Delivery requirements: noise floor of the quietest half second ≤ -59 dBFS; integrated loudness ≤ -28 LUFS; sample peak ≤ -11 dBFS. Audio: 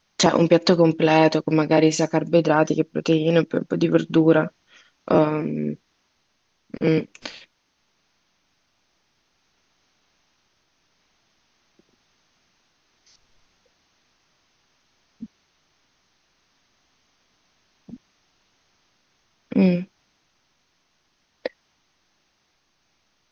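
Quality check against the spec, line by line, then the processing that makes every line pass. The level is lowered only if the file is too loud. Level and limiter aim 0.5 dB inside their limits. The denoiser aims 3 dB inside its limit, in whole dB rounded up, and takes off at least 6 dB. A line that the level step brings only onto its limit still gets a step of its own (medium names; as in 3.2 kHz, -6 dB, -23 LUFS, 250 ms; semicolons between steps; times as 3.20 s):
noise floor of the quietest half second -69 dBFS: pass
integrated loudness -20.0 LUFS: fail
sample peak -2.5 dBFS: fail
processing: trim -8.5 dB; peak limiter -11.5 dBFS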